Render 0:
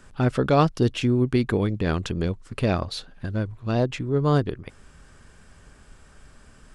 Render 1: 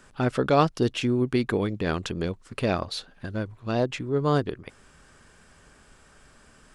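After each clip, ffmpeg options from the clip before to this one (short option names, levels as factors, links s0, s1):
-af "lowshelf=f=150:g=-9.5"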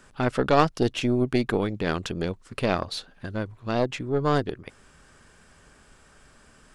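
-af "aeval=exprs='0.562*(cos(1*acos(clip(val(0)/0.562,-1,1)))-cos(1*PI/2))+0.126*(cos(2*acos(clip(val(0)/0.562,-1,1)))-cos(2*PI/2))+0.0316*(cos(6*acos(clip(val(0)/0.562,-1,1)))-cos(6*PI/2))':c=same"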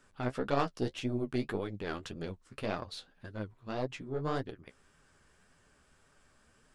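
-af "flanger=delay=6.4:depth=10:regen=25:speed=1.8:shape=triangular,volume=0.422"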